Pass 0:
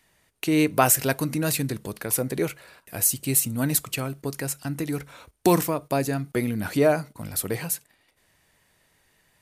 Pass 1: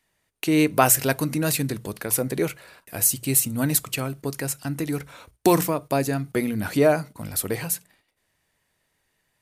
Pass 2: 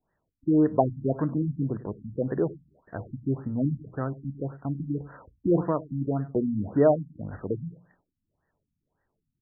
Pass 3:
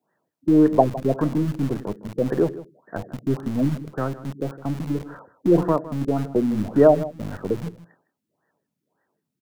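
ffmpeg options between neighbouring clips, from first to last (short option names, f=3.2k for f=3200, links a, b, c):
-af "bandreject=f=60:t=h:w=6,bandreject=f=120:t=h:w=6,bandreject=f=180:t=h:w=6,agate=range=-9dB:threshold=-57dB:ratio=16:detection=peak,volume=1.5dB"
-filter_complex "[0:a]asplit=2[a][b];[b]adelay=100,lowpass=f=1.7k:p=1,volume=-18dB,asplit=2[c][d];[d]adelay=100,lowpass=f=1.7k:p=1,volume=0.21[e];[a][c][e]amix=inputs=3:normalize=0,adynamicsmooth=sensitivity=4:basefreq=4.6k,afftfilt=real='re*lt(b*sr/1024,260*pow(2000/260,0.5+0.5*sin(2*PI*1.8*pts/sr)))':imag='im*lt(b*sr/1024,260*pow(2000/260,0.5+0.5*sin(2*PI*1.8*pts/sr)))':win_size=1024:overlap=0.75,volume=-1.5dB"
-filter_complex "[0:a]acrossover=split=150[a][b];[a]acrusher=bits=4:dc=4:mix=0:aa=0.000001[c];[c][b]amix=inputs=2:normalize=0,aecho=1:1:159:0.15,volume=6dB"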